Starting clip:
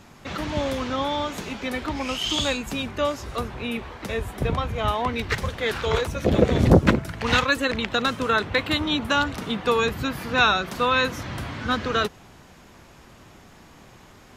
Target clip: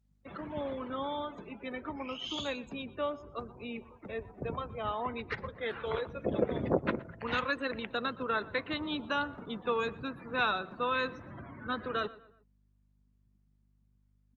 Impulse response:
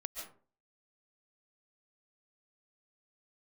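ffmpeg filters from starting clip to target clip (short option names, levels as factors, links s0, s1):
-filter_complex "[0:a]afftdn=nr=36:nf=-33,highpass=f=230:p=1,highshelf=f=3000:g=-8,bandreject=f=780:w=18,acrossover=split=290[s0][s1];[s0]acompressor=threshold=0.0562:ratio=10[s2];[s2][s1]amix=inputs=2:normalize=0,aeval=exprs='val(0)+0.000891*(sin(2*PI*50*n/s)+sin(2*PI*2*50*n/s)/2+sin(2*PI*3*50*n/s)/3+sin(2*PI*4*50*n/s)/4+sin(2*PI*5*50*n/s)/5)':c=same,asplit=2[s3][s4];[s4]adelay=120,lowpass=f=2600:p=1,volume=0.119,asplit=2[s5][s6];[s6]adelay=120,lowpass=f=2600:p=1,volume=0.43,asplit=2[s7][s8];[s8]adelay=120,lowpass=f=2600:p=1,volume=0.43[s9];[s3][s5][s7][s9]amix=inputs=4:normalize=0,volume=0.376" -ar 48000 -c:a libopus -b:a 32k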